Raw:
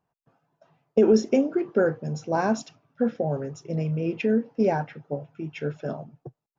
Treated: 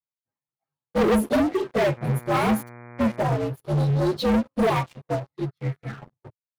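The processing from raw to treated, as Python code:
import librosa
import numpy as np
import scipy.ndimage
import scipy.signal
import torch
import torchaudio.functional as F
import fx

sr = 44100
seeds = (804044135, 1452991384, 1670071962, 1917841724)

y = fx.partial_stretch(x, sr, pct=120)
y = fx.curve_eq(y, sr, hz=(110.0, 930.0, 1400.0, 2800.0), db=(0, -19, 12, -14), at=(5.45, 6.01), fade=0.02)
y = fx.leveller(y, sr, passes=5)
y = fx.dmg_buzz(y, sr, base_hz=120.0, harmonics=20, level_db=-28.0, tilt_db=-4, odd_only=False, at=(1.96, 3.23), fade=0.02)
y = fx.upward_expand(y, sr, threshold_db=-27.0, expansion=1.5)
y = y * librosa.db_to_amplitude(-6.5)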